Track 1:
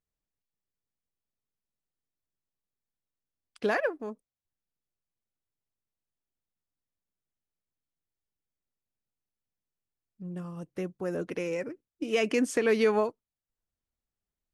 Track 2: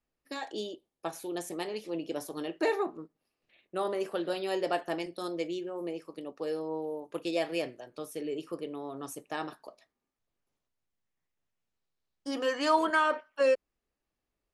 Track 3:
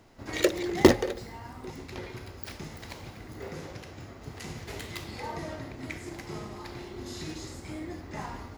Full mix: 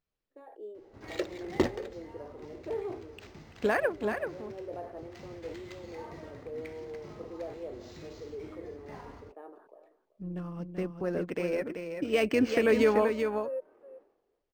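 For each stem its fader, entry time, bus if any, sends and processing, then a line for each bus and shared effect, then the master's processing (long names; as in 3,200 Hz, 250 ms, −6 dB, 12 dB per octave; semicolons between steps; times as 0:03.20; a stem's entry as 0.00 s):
+2.0 dB, 0.00 s, no send, echo send −6.5 dB, amplitude modulation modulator 150 Hz, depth 20%; de-essing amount 75%
−0.5 dB, 0.05 s, no send, echo send −18.5 dB, four-pole ladder band-pass 500 Hz, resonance 50%; level that may fall only so fast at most 77 dB per second; automatic ducking −9 dB, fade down 0.35 s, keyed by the first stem
−9.0 dB, 0.75 s, no send, no echo send, no processing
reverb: not used
echo: single-tap delay 384 ms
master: notch filter 7,300 Hz; linearly interpolated sample-rate reduction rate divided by 4×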